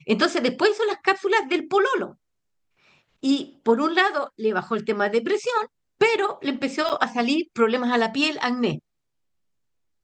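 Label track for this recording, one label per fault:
6.890000	6.900000	gap 7.9 ms

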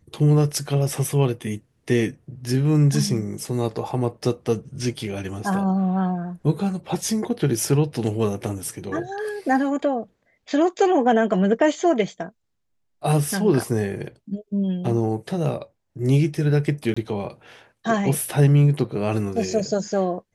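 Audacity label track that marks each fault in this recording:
16.940000	16.960000	gap 25 ms

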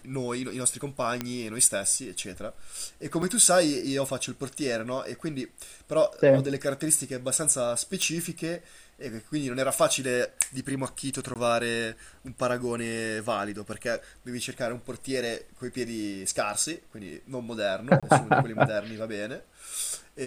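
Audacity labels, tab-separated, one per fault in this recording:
1.210000	1.210000	pop -13 dBFS
3.220000	3.220000	gap 4.8 ms
8.020000	8.020000	pop
11.340000	11.360000	gap 18 ms
18.000000	18.030000	gap 26 ms

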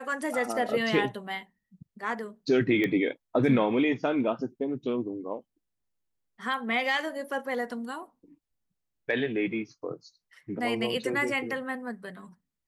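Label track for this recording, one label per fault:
2.840000	2.840000	pop -17 dBFS

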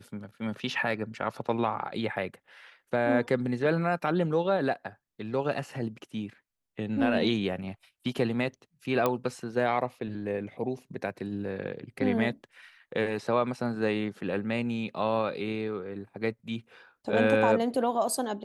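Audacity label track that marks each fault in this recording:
9.060000	9.060000	pop -12 dBFS

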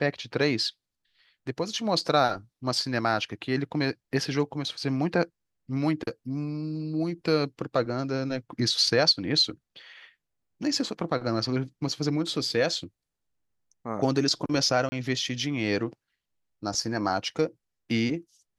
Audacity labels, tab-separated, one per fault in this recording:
14.890000	14.920000	gap 30 ms

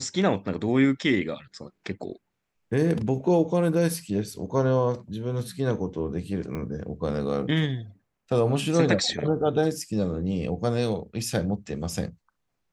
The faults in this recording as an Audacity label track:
6.550000	6.550000	pop -21 dBFS

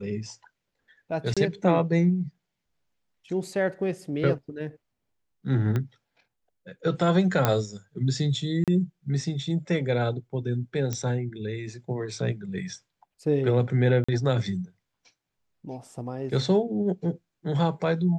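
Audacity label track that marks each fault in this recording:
1.340000	1.370000	gap 26 ms
5.760000	5.760000	pop -16 dBFS
7.450000	7.450000	pop -7 dBFS
8.640000	8.680000	gap 37 ms
10.930000	10.930000	pop -15 dBFS
14.040000	14.090000	gap 45 ms

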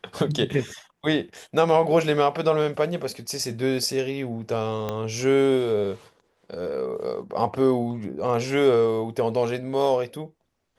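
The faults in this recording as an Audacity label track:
4.890000	4.890000	pop -14 dBFS

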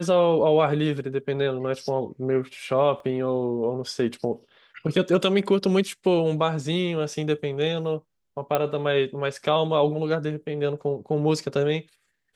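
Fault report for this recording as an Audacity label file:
3.000000	3.000000	gap 2.2 ms
8.550000	8.550000	pop -10 dBFS

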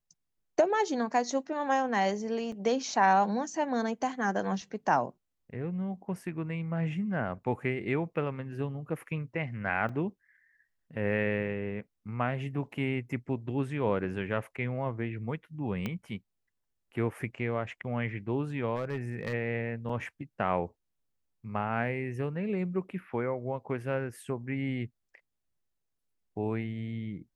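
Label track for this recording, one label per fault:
2.520000	2.520000	gap 3.4 ms
9.890000	9.890000	gap 3.7 ms
15.860000	15.860000	pop -20 dBFS
18.760000	19.340000	clipped -27.5 dBFS
19.890000	19.890000	gap 4.6 ms

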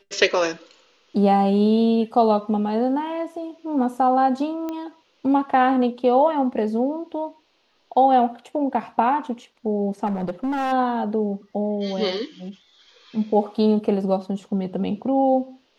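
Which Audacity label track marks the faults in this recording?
4.690000	4.690000	pop -17 dBFS
10.060000	10.730000	clipped -21 dBFS

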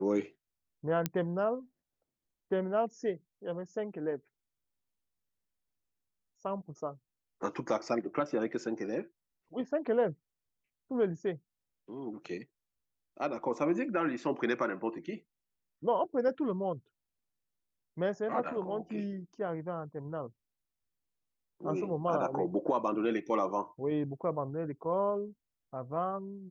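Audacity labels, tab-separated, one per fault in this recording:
1.060000	1.060000	pop -15 dBFS

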